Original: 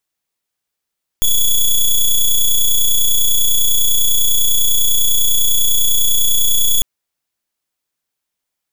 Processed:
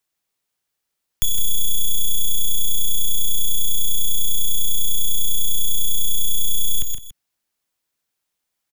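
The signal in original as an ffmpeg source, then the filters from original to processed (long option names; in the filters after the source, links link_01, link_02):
-f lavfi -i "aevalsrc='0.266*(2*lt(mod(3390*t,1),0.1)-1)':duration=5.6:sample_rate=44100"
-filter_complex "[0:a]asplit=2[link_01][link_02];[link_02]aecho=0:1:124:0.335[link_03];[link_01][link_03]amix=inputs=2:normalize=0,acrossover=split=150|300|1200[link_04][link_05][link_06][link_07];[link_04]acompressor=threshold=-15dB:ratio=4[link_08];[link_05]acompressor=threshold=-49dB:ratio=4[link_09];[link_06]acompressor=threshold=-59dB:ratio=4[link_10];[link_07]acompressor=threshold=-21dB:ratio=4[link_11];[link_08][link_09][link_10][link_11]amix=inputs=4:normalize=0,asplit=2[link_12][link_13];[link_13]aecho=0:1:161:0.266[link_14];[link_12][link_14]amix=inputs=2:normalize=0"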